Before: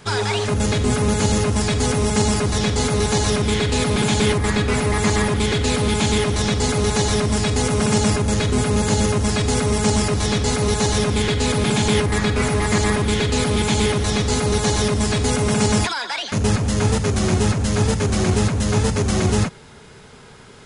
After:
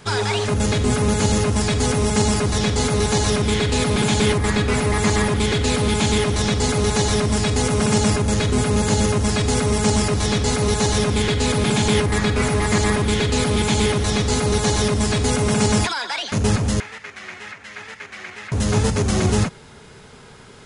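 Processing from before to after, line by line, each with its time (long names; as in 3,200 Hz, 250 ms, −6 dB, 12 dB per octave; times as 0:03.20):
0:16.80–0:18.52: resonant band-pass 2,000 Hz, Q 2.7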